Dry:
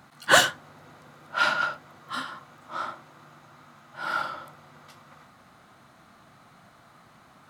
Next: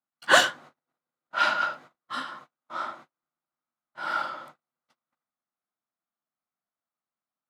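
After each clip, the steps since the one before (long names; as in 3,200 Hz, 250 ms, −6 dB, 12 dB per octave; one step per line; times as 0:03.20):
high-pass filter 220 Hz 12 dB per octave
noise gate −46 dBFS, range −41 dB
high-shelf EQ 10,000 Hz −12 dB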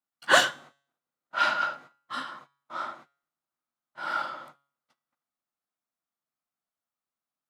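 tuned comb filter 140 Hz, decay 0.52 s, harmonics all, mix 40%
level +2.5 dB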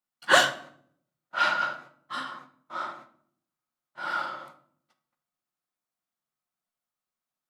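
rectangular room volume 960 cubic metres, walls furnished, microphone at 0.96 metres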